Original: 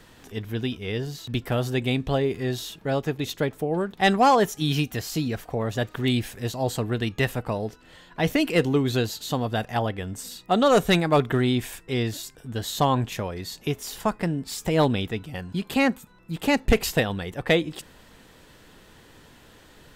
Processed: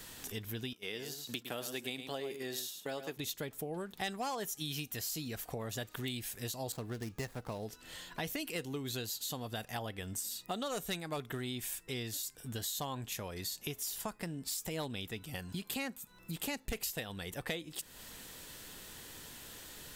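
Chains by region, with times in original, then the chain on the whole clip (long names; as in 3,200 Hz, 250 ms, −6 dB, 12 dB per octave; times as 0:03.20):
0:00.73–0:03.17: noise gate −36 dBFS, range −10 dB + high-pass filter 250 Hz + single-tap delay 108 ms −10 dB
0:06.72–0:07.66: running median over 15 samples + high-shelf EQ 8,000 Hz −4 dB
whole clip: first-order pre-emphasis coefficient 0.8; downward compressor 4 to 1, threshold −49 dBFS; level +10 dB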